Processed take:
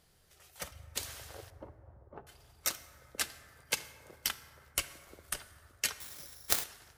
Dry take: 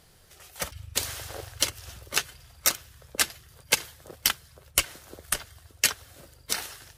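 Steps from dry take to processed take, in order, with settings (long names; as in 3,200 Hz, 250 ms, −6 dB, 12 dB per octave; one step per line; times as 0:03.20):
0:01.50–0:02.27: Chebyshev low-pass filter 870 Hz, order 3
dense smooth reverb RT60 2.8 s, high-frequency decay 0.3×, DRR 12 dB
0:06.00–0:06.64: bad sample-rate conversion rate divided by 8×, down none, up zero stuff
level −10 dB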